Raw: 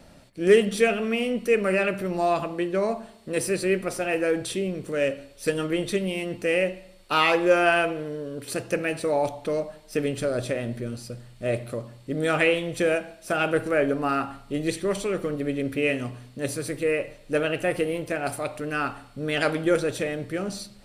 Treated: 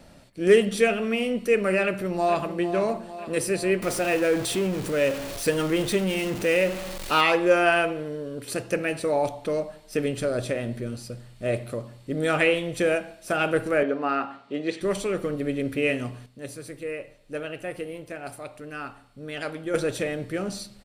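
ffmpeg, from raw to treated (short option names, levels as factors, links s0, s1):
-filter_complex "[0:a]asplit=2[s0][s1];[s1]afade=t=in:st=1.83:d=0.01,afade=t=out:st=2.53:d=0.01,aecho=0:1:450|900|1350|1800|2250|2700|3150:0.298538|0.179123|0.107474|0.0644843|0.0386906|0.0232143|0.0139286[s2];[s0][s2]amix=inputs=2:normalize=0,asettb=1/sr,asplit=3[s3][s4][s5];[s3]atrim=end=3.824[s6];[s4]atrim=start=3.82:end=7.21,asetpts=PTS-STARTPTS,afade=t=in:d=0.004:c=qsin,afade=t=out:st=3.386:d=0.004:c=qsin,aeval=exprs='val(0)+0.5*0.0335*sgn(val(0))':c=same[s7];[s5]atrim=start=7.206[s8];[s6][s7]acrossfade=d=0.004:c1=hsin:c2=qsin[s9];[s9][s8]acrossfade=d=0.004:c1=qsin:c2=hsin,asettb=1/sr,asplit=3[s10][s11][s12];[s10]atrim=end=13.834[s13];[s11]atrim=start=13.83:end=14.81,asetpts=PTS-STARTPTS,afade=t=in:d=0.004:c=qsin,afade=t=out:st=0.976:d=0.004:c=qsin,highpass=260,lowpass=3900[s14];[s12]atrim=start=14.806[s15];[s13][s14]acrossfade=d=0.004:c1=hsin:c2=qsin[s16];[s16][s15]acrossfade=d=0.004:c1=qsin:c2=hsin,asplit=3[s17][s18][s19];[s17]atrim=end=16.262[s20];[s18]atrim=start=16.258:end=19.742,asetpts=PTS-STARTPTS,volume=0.376[s21];[s19]atrim=start=19.738[s22];[s20][s21]acrossfade=d=0.004:c1=hsin:c2=hsin[s23];[s23][s22]acrossfade=d=0.004:c1=hsin:c2=hsin"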